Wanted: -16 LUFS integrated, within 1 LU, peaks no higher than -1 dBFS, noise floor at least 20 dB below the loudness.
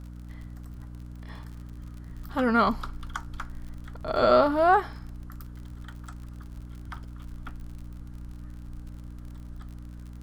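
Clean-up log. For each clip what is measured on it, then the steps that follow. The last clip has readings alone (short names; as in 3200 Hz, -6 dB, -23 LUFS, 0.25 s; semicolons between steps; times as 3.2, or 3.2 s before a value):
ticks 51/s; hum 60 Hz; harmonics up to 300 Hz; hum level -39 dBFS; loudness -24.5 LUFS; peak -8.0 dBFS; loudness target -16.0 LUFS
-> de-click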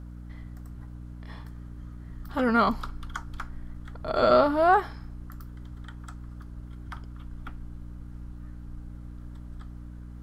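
ticks 0/s; hum 60 Hz; harmonics up to 300 Hz; hum level -39 dBFS
-> notches 60/120/180/240/300 Hz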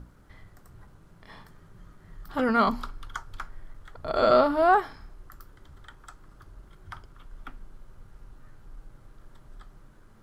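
hum none; loudness -24.5 LUFS; peak -7.5 dBFS; loudness target -16.0 LUFS
-> gain +8.5 dB; limiter -1 dBFS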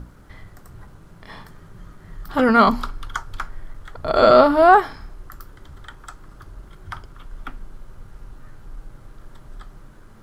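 loudness -16.5 LUFS; peak -1.0 dBFS; noise floor -47 dBFS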